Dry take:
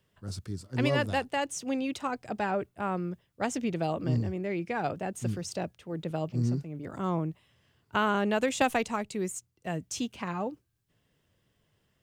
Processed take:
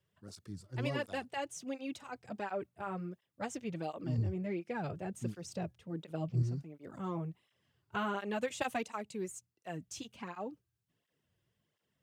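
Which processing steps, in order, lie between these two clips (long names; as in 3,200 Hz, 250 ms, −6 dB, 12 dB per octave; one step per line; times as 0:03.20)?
0:04.18–0:06.43: low-shelf EQ 280 Hz +7 dB
through-zero flanger with one copy inverted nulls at 1.4 Hz, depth 4.7 ms
level −6 dB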